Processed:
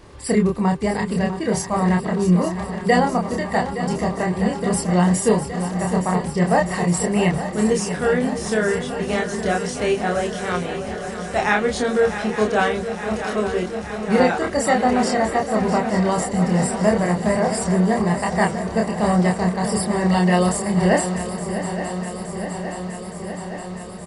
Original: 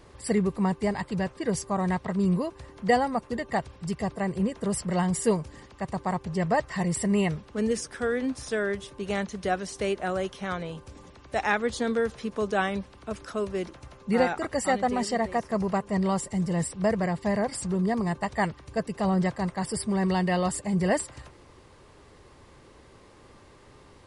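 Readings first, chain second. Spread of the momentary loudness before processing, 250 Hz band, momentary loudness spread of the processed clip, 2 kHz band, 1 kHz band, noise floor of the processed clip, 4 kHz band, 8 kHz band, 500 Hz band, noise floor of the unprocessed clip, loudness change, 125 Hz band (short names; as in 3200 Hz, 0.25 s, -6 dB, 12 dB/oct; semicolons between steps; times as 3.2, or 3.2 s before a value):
8 LU, +8.0 dB, 9 LU, +8.0 dB, +8.0 dB, -31 dBFS, +8.0 dB, +8.0 dB, +8.0 dB, -53 dBFS, +7.5 dB, +8.5 dB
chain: doubler 28 ms -2.5 dB; swung echo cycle 0.868 s, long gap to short 3:1, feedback 73%, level -11 dB; gain +5 dB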